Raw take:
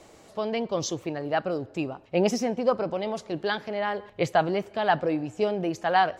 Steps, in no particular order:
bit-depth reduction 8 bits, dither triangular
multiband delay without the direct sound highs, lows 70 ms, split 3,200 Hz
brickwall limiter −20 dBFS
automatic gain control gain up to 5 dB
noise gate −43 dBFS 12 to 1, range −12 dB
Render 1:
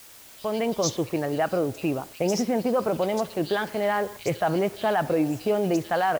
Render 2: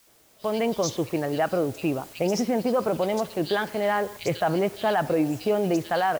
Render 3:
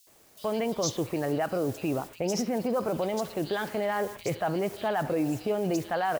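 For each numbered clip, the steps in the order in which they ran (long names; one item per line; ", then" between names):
brickwall limiter, then automatic gain control, then noise gate, then multiband delay without the direct sound, then bit-depth reduction
multiband delay without the direct sound, then brickwall limiter, then automatic gain control, then bit-depth reduction, then noise gate
automatic gain control, then bit-depth reduction, then brickwall limiter, then noise gate, then multiband delay without the direct sound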